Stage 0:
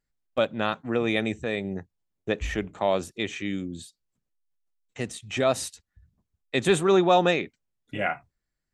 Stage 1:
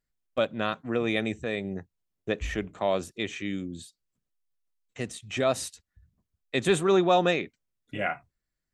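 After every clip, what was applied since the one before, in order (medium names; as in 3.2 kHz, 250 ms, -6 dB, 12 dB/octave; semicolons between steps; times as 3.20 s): band-stop 850 Hz, Q 12; trim -2 dB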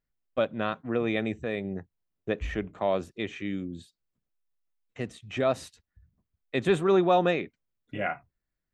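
peaking EQ 9.2 kHz -13 dB 2 oct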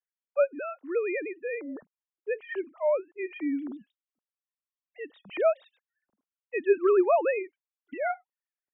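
formants replaced by sine waves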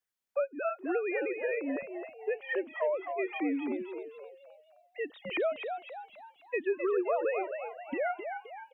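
compression 4:1, threshold -36 dBFS, peak gain reduction 16.5 dB; on a send: frequency-shifting echo 261 ms, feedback 44%, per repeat +85 Hz, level -7 dB; on the sum: trim +5.5 dB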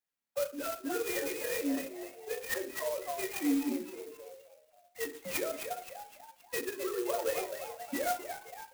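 reverberation RT60 0.45 s, pre-delay 3 ms, DRR 1 dB; sampling jitter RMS 0.073 ms; trim -3 dB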